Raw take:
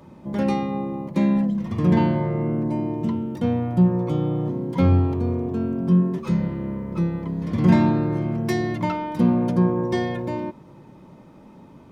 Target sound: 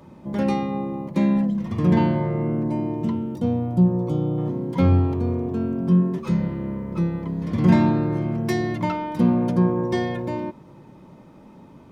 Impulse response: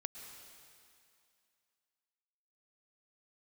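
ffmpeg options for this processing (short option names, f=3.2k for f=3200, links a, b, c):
-filter_complex "[0:a]asettb=1/sr,asplit=3[a][b][c];[a]atrim=end=3.354[d];[b]atrim=start=3.35:end=4.38,asetpts=PTS-STARTPTS,afade=t=in:d=0.004:c=qsin,afade=t=out:st=1.026:d=0.004:c=qsin,equalizer=f=1.9k:t=o:w=1.4:g=-11[e];[c]atrim=start=4.376[f];[d][e]acrossfade=d=0.004:c1=hsin:c2=qsin[g];[g][f]acrossfade=d=0.004:c1=qsin:c2=hsin"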